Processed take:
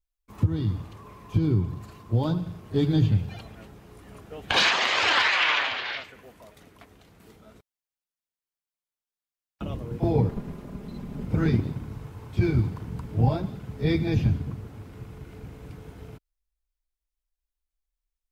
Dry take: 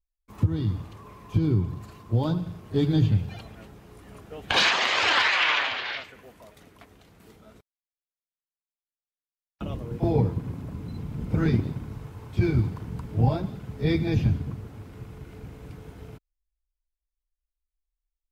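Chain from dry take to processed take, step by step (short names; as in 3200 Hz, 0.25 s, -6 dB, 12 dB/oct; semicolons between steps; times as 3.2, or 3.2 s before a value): 10.29–11.26 minimum comb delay 4.9 ms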